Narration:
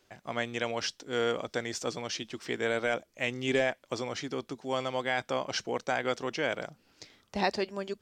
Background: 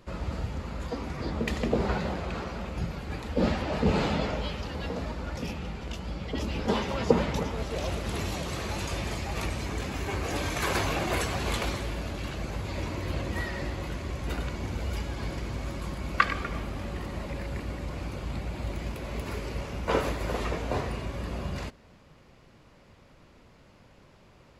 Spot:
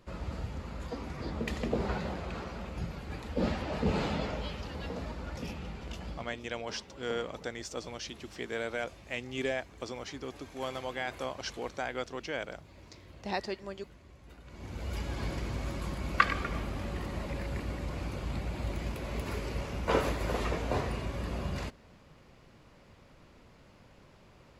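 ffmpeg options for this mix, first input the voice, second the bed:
-filter_complex "[0:a]adelay=5900,volume=0.531[s0];[1:a]volume=5.31,afade=t=out:st=6.08:d=0.3:silence=0.158489,afade=t=in:st=14.44:d=0.71:silence=0.105925[s1];[s0][s1]amix=inputs=2:normalize=0"

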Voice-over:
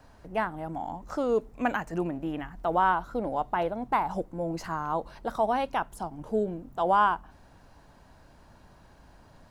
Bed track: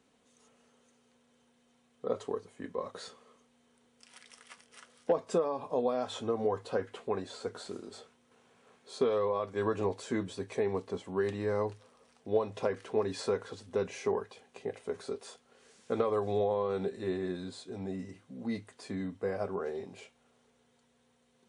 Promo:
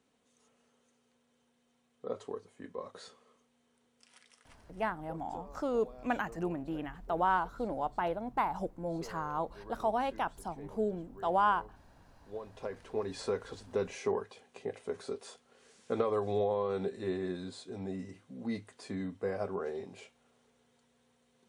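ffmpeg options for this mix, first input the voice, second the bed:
-filter_complex "[0:a]adelay=4450,volume=0.562[s0];[1:a]volume=5.01,afade=t=out:st=4.05:d=0.83:silence=0.177828,afade=t=in:st=12.18:d=1.36:silence=0.112202[s1];[s0][s1]amix=inputs=2:normalize=0"

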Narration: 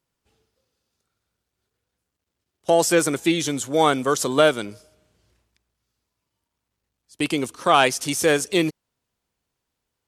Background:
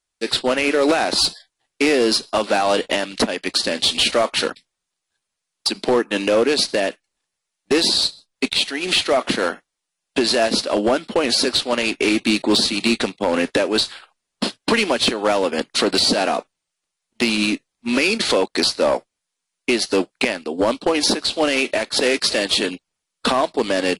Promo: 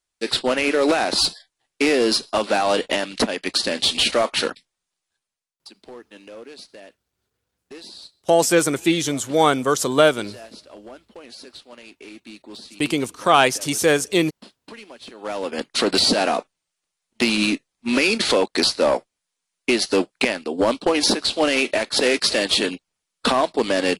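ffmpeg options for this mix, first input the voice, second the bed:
-filter_complex "[0:a]adelay=5600,volume=1.19[s0];[1:a]volume=11.2,afade=t=out:st=5.05:d=0.56:silence=0.0841395,afade=t=in:st=15.08:d=0.87:silence=0.0749894[s1];[s0][s1]amix=inputs=2:normalize=0"

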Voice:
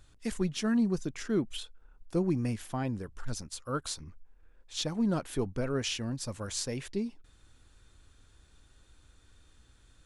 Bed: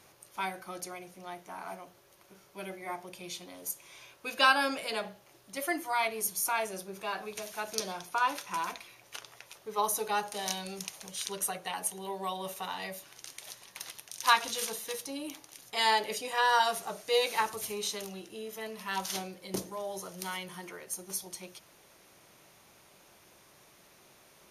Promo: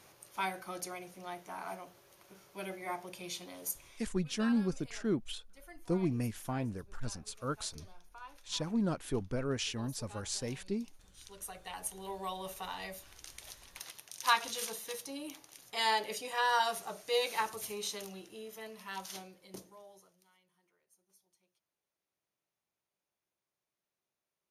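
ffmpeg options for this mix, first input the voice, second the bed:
-filter_complex "[0:a]adelay=3750,volume=0.708[s0];[1:a]volume=7.5,afade=t=out:st=3.68:d=0.44:silence=0.0841395,afade=t=in:st=11.15:d=0.94:silence=0.125893,afade=t=out:st=18.11:d=2.13:silence=0.0375837[s1];[s0][s1]amix=inputs=2:normalize=0"

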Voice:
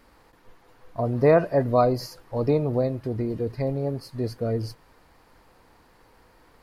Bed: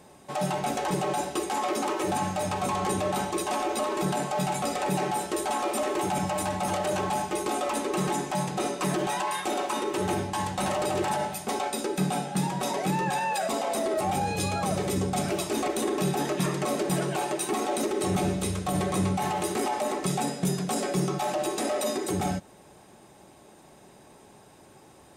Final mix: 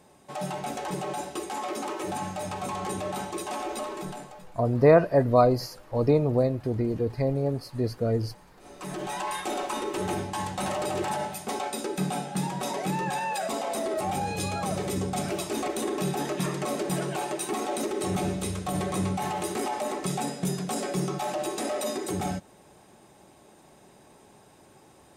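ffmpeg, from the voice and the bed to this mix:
-filter_complex "[0:a]adelay=3600,volume=1.06[s0];[1:a]volume=11.9,afade=t=out:st=3.76:d=0.7:silence=0.0668344,afade=t=in:st=8.61:d=0.68:silence=0.0501187[s1];[s0][s1]amix=inputs=2:normalize=0"

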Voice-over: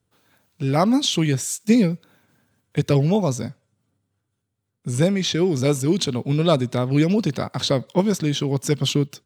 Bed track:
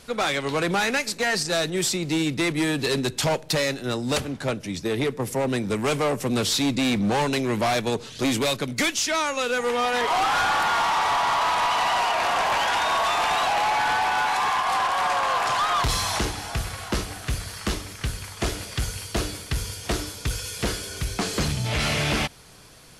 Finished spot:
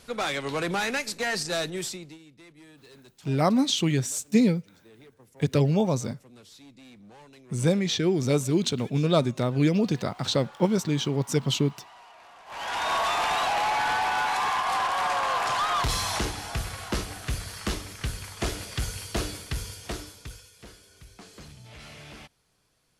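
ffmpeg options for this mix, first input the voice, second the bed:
-filter_complex "[0:a]adelay=2650,volume=0.631[s0];[1:a]volume=10.6,afade=t=out:st=1.61:d=0.57:silence=0.0668344,afade=t=in:st=12.46:d=0.47:silence=0.0562341,afade=t=out:st=19.3:d=1.2:silence=0.11885[s1];[s0][s1]amix=inputs=2:normalize=0"

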